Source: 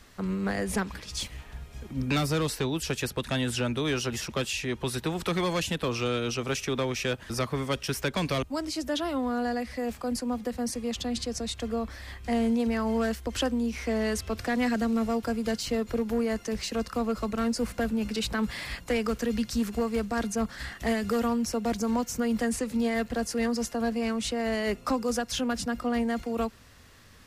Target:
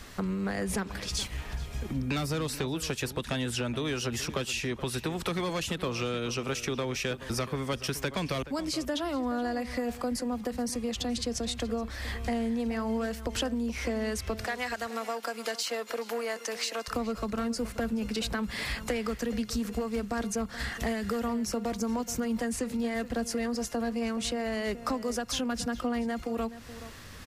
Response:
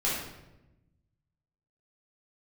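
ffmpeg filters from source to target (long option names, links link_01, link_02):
-filter_complex "[0:a]asettb=1/sr,asplit=3[link_01][link_02][link_03];[link_01]atrim=end=14.464[link_04];[link_02]atrim=start=14.46:end=16.88,asetpts=PTS-STARTPTS,afade=type=in:duration=0.004:curve=qsin,afade=type=out:start_time=2.416:duration=0.004:curve=qsin,highpass=670[link_05];[link_03]atrim=start=16.876[link_06];[link_04][link_05]acrossfade=duration=0.004:curve1=hsin:curve2=qsin[link_07];[link_07][link_06]acrossfade=duration=0.004:curve1=qsin:curve2=hsin,acompressor=threshold=-38dB:ratio=4,asplit=2[link_08][link_09];[link_09]adelay=425.7,volume=-14dB,highshelf=frequency=4000:gain=-9.58[link_10];[link_08][link_10]amix=inputs=2:normalize=0,volume=7.5dB"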